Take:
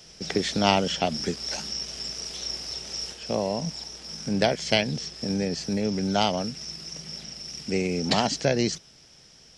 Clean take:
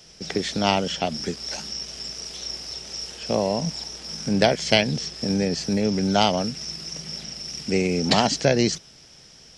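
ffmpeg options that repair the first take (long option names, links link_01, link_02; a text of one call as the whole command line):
ffmpeg -i in.wav -af "asetnsamples=nb_out_samples=441:pad=0,asendcmd='3.13 volume volume 4dB',volume=0dB" out.wav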